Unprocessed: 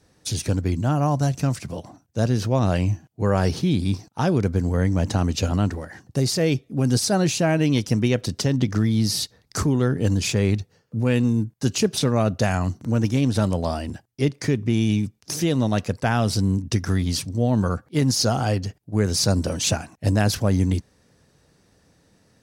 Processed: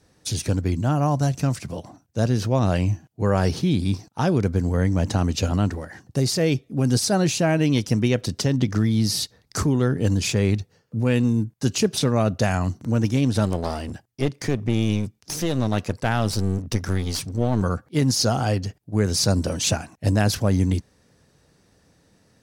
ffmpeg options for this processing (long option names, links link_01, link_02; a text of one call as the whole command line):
ffmpeg -i in.wav -filter_complex "[0:a]asettb=1/sr,asplit=3[link_01][link_02][link_03];[link_01]atrim=end=13.454[link_04];[link_02]atrim=start=13.45:end=17.62,asetpts=PTS-STARTPTS,afade=type=in:duration=0.004:curve=qsin,afade=type=out:start_time=4.166:duration=0.004:curve=qsin,aeval=exprs='clip(val(0),-1,0.0398)':channel_layout=same[link_05];[link_03]atrim=start=17.616[link_06];[link_04][link_05]acrossfade=duration=0.004:curve1=hsin:curve2=qsin[link_07];[link_07][link_06]acrossfade=duration=0.004:curve1=qsin:curve2=hsin" out.wav